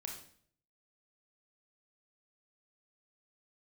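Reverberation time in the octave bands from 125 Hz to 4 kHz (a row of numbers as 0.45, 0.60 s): 0.80, 0.65, 0.60, 0.50, 0.50, 0.50 s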